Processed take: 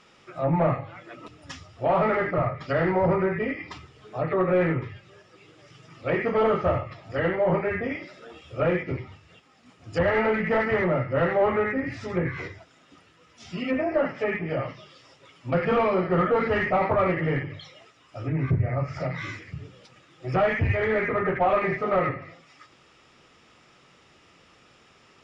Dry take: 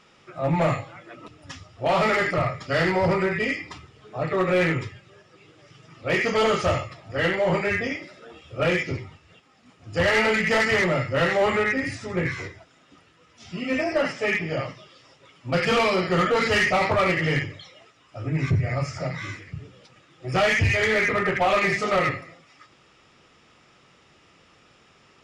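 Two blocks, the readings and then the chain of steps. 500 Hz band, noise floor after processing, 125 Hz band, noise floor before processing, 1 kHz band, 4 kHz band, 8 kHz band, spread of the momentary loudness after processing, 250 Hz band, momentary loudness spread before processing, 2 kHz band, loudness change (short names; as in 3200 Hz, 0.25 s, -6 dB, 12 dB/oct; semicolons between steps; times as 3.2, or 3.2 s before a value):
0.0 dB, -58 dBFS, -1.0 dB, -57 dBFS, -1.0 dB, -12.5 dB, under -15 dB, 17 LU, -0.5 dB, 15 LU, -6.5 dB, -2.0 dB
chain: notches 50/100/150/200 Hz; treble ducked by the level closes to 1400 Hz, closed at -22 dBFS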